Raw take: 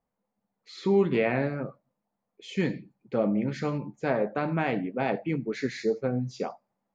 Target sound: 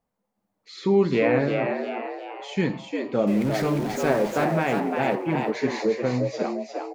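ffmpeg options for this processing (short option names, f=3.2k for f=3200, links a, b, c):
-filter_complex "[0:a]asettb=1/sr,asplit=3[a][b][c];[a]atrim=end=3.274[d];[b]atrim=start=3.27:end=4.45,asetpts=PTS-STARTPTS,afade=t=in:d=0.004:c=qsin,afade=t=out:st=1.176:d=0.004:c=qsin,aeval=exprs='val(0)+0.5*0.0188*sgn(val(0))':c=same[e];[c]atrim=start=4.446[f];[d][e]acrossfade=d=0.004:c1=hsin:c2=qsin[g];[g][f]acrossfade=d=0.004:c1=qsin:c2=hsin,asplit=2[h][i];[i]asplit=6[j][k][l][m][n][o];[j]adelay=352,afreqshift=98,volume=-5dB[p];[k]adelay=704,afreqshift=196,volume=-11.6dB[q];[l]adelay=1056,afreqshift=294,volume=-18.1dB[r];[m]adelay=1408,afreqshift=392,volume=-24.7dB[s];[n]adelay=1760,afreqshift=490,volume=-31.2dB[t];[o]adelay=2112,afreqshift=588,volume=-37.8dB[u];[p][q][r][s][t][u]amix=inputs=6:normalize=0[v];[h][v]amix=inputs=2:normalize=0,volume=3dB"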